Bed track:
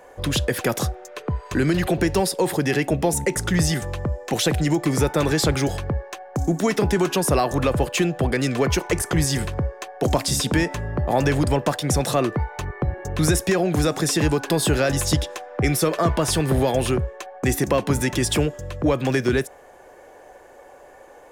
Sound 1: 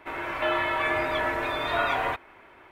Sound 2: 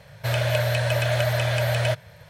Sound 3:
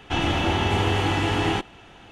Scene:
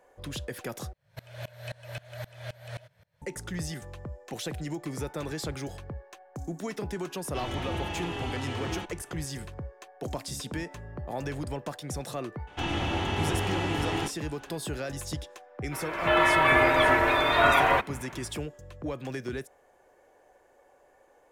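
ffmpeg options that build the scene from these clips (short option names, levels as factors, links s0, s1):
-filter_complex "[3:a]asplit=2[s0][s1];[0:a]volume=0.188[s2];[2:a]aeval=exprs='val(0)*pow(10,-26*if(lt(mod(-3.8*n/s,1),2*abs(-3.8)/1000),1-mod(-3.8*n/s,1)/(2*abs(-3.8)/1000),(mod(-3.8*n/s,1)-2*abs(-3.8)/1000)/(1-2*abs(-3.8)/1000))/20)':c=same[s3];[s0]asplit=2[s4][s5];[s5]adelay=4.6,afreqshift=-1[s6];[s4][s6]amix=inputs=2:normalize=1[s7];[1:a]dynaudnorm=f=280:g=3:m=4.47[s8];[s2]asplit=2[s9][s10];[s9]atrim=end=0.934[s11];[s3]atrim=end=2.29,asetpts=PTS-STARTPTS,volume=0.282[s12];[s10]atrim=start=3.216[s13];[s7]atrim=end=2.11,asetpts=PTS-STARTPTS,volume=0.355,afade=t=in:d=0.004:c=hsin,afade=t=out:st=2.106:d=0.004:c=hsin,adelay=7240[s14];[s1]atrim=end=2.11,asetpts=PTS-STARTPTS,volume=0.447,afade=t=in:d=0.004:c=hsin,afade=t=out:st=2.106:d=0.004:c=hsin,adelay=12470[s15];[s8]atrim=end=2.71,asetpts=PTS-STARTPTS,volume=0.501,afade=t=in:d=0.1,afade=t=out:st=2.61:d=0.1,adelay=15650[s16];[s11][s12]acrossfade=d=0.004:c1=hsin:c2=hsin[s17];[s17][s13]acrossfade=d=0.004:c1=hsin:c2=hsin[s18];[s18][s14][s15][s16]amix=inputs=4:normalize=0"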